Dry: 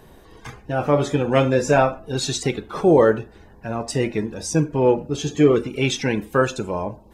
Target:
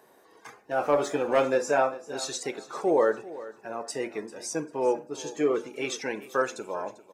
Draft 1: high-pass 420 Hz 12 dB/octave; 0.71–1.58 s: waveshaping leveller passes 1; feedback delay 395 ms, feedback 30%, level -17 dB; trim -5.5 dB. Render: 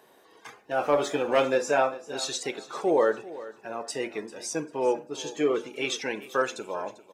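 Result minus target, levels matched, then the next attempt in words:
4 kHz band +4.0 dB
high-pass 420 Hz 12 dB/octave; peaking EQ 3.2 kHz -7 dB 0.77 oct; 0.71–1.58 s: waveshaping leveller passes 1; feedback delay 395 ms, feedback 30%, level -17 dB; trim -5.5 dB

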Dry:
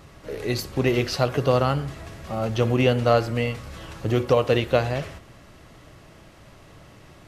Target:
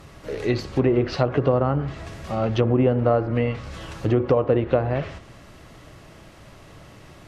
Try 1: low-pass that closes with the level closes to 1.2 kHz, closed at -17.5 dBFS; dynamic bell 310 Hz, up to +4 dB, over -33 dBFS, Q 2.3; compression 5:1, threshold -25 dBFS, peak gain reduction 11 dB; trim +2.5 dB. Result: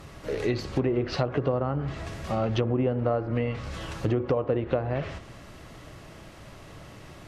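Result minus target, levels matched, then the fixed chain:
compression: peak gain reduction +7 dB
low-pass that closes with the level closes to 1.2 kHz, closed at -17.5 dBFS; dynamic bell 310 Hz, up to +4 dB, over -33 dBFS, Q 2.3; compression 5:1, threshold -16.5 dBFS, peak gain reduction 4.5 dB; trim +2.5 dB

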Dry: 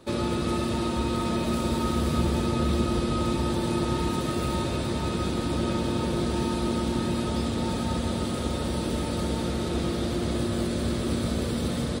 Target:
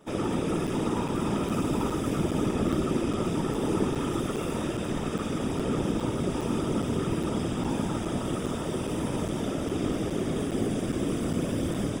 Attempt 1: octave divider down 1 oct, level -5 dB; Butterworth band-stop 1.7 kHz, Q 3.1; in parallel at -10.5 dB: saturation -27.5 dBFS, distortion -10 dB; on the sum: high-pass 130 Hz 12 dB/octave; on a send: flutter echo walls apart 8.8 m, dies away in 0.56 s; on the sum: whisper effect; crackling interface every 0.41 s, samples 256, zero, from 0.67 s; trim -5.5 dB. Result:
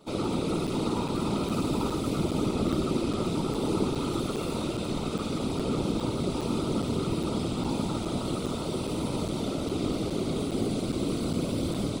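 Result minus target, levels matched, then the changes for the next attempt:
saturation: distortion +8 dB; 4 kHz band +3.5 dB
change: Butterworth band-stop 4.2 kHz, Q 3.1; change: saturation -19.5 dBFS, distortion -18 dB

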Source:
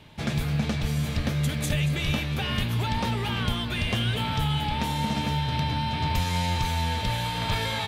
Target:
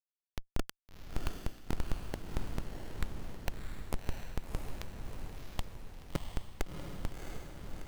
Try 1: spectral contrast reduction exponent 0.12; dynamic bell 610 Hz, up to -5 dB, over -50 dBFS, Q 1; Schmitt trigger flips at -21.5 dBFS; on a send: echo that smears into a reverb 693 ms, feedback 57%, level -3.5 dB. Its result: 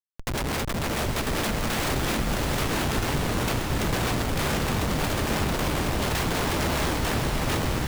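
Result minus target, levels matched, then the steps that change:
Schmitt trigger: distortion -24 dB
change: Schmitt trigger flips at -13.5 dBFS

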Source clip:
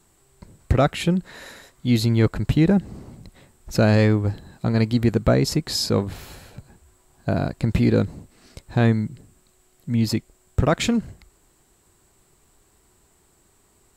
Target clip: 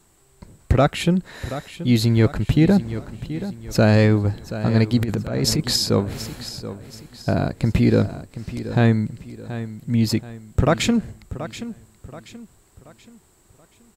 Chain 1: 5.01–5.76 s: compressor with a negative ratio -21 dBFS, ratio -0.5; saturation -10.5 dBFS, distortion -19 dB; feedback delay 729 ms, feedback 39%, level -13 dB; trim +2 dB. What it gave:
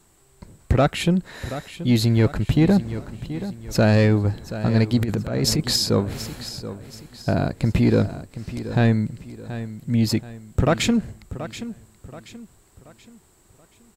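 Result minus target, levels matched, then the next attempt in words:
saturation: distortion +13 dB
5.01–5.76 s: compressor with a negative ratio -21 dBFS, ratio -0.5; saturation -3 dBFS, distortion -32 dB; feedback delay 729 ms, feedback 39%, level -13 dB; trim +2 dB

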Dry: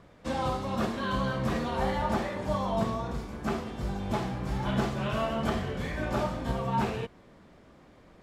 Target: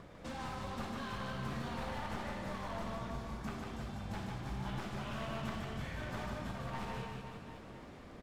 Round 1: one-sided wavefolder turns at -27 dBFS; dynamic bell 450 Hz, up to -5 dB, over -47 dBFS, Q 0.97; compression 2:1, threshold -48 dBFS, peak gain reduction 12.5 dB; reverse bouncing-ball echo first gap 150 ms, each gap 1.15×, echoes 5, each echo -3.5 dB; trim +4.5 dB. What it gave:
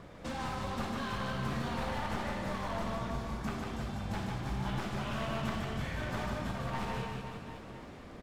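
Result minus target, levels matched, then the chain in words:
compression: peak gain reduction -5 dB
one-sided wavefolder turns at -27 dBFS; dynamic bell 450 Hz, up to -5 dB, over -47 dBFS, Q 0.97; compression 2:1, threshold -58 dBFS, peak gain reduction 17.5 dB; reverse bouncing-ball echo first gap 150 ms, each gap 1.15×, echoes 5, each echo -3.5 dB; trim +4.5 dB

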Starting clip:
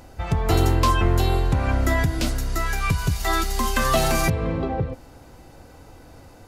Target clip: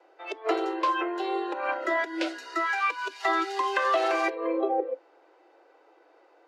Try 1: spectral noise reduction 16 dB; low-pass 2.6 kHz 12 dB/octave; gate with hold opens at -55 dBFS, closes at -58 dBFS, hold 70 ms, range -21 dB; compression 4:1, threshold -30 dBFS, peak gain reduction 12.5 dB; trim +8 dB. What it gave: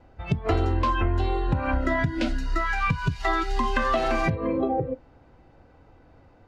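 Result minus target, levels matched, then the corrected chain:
250 Hz band +3.0 dB
spectral noise reduction 16 dB; low-pass 2.6 kHz 12 dB/octave; gate with hold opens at -55 dBFS, closes at -58 dBFS, hold 70 ms, range -21 dB; compression 4:1, threshold -30 dBFS, peak gain reduction 12.5 dB; steep high-pass 320 Hz 96 dB/octave; trim +8 dB

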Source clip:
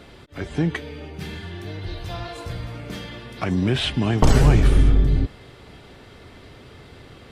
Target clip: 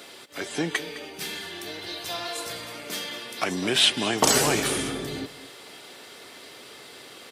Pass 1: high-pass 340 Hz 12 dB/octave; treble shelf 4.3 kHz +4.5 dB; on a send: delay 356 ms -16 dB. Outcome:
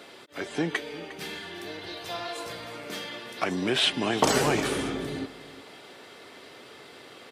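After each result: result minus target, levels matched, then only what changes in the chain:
echo 145 ms late; 8 kHz band -5.5 dB
change: delay 211 ms -16 dB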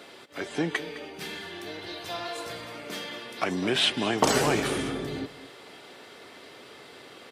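8 kHz band -5.5 dB
change: treble shelf 4.3 kHz +16.5 dB

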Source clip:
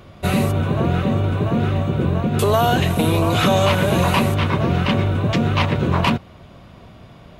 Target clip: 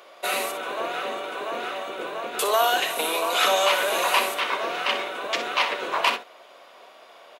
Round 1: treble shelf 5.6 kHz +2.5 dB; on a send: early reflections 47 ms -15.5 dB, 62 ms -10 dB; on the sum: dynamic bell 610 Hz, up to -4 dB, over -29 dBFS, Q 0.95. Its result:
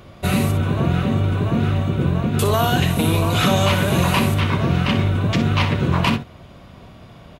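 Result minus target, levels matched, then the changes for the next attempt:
500 Hz band -3.0 dB
add after dynamic bell: high-pass 480 Hz 24 dB/octave

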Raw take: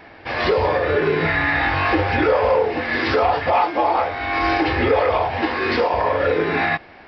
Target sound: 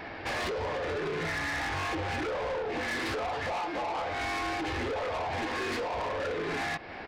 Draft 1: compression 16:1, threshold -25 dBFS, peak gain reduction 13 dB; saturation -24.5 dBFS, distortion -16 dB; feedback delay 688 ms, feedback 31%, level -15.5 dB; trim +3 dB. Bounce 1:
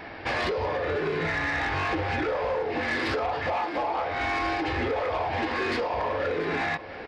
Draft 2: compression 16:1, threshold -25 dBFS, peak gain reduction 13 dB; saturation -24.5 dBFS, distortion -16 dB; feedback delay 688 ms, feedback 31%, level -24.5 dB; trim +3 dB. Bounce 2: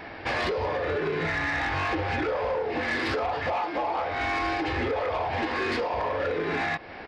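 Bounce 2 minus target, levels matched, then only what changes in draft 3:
saturation: distortion -8 dB
change: saturation -33 dBFS, distortion -8 dB

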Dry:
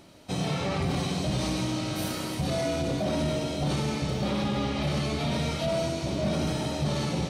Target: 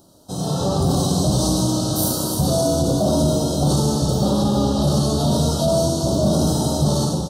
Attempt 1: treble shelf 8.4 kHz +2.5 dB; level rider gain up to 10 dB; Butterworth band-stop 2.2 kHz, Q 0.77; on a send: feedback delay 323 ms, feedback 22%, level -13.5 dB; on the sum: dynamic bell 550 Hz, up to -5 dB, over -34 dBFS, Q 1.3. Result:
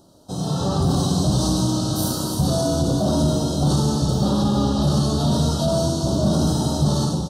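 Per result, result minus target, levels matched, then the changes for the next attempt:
2 kHz band +3.5 dB; 8 kHz band -2.5 dB
change: dynamic bell 1.8 kHz, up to -5 dB, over -34 dBFS, Q 1.3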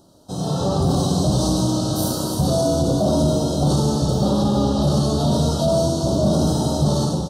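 8 kHz band -3.5 dB
change: treble shelf 8.4 kHz +12 dB

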